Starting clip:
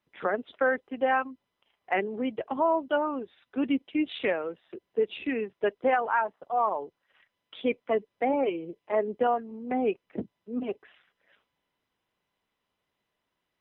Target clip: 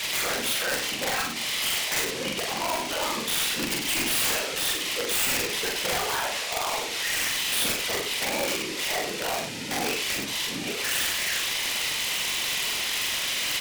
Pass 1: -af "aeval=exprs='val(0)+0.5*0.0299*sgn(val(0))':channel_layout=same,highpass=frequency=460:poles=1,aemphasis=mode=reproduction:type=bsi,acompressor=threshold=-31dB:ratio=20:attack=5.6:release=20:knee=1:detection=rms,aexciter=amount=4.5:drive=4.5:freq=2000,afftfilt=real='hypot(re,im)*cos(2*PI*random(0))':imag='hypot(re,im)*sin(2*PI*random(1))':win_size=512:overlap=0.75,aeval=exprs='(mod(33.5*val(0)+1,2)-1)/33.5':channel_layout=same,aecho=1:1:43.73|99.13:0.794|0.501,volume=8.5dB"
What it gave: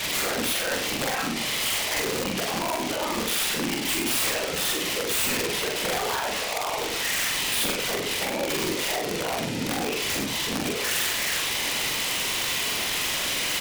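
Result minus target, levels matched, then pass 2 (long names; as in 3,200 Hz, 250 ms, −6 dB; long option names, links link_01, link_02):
500 Hz band +2.5 dB
-af "aeval=exprs='val(0)+0.5*0.0299*sgn(val(0))':channel_layout=same,highpass=frequency=1500:poles=1,aemphasis=mode=reproduction:type=bsi,acompressor=threshold=-31dB:ratio=20:attack=5.6:release=20:knee=1:detection=rms,aexciter=amount=4.5:drive=4.5:freq=2000,afftfilt=real='hypot(re,im)*cos(2*PI*random(0))':imag='hypot(re,im)*sin(2*PI*random(1))':win_size=512:overlap=0.75,aeval=exprs='(mod(33.5*val(0)+1,2)-1)/33.5':channel_layout=same,aecho=1:1:43.73|99.13:0.794|0.501,volume=8.5dB"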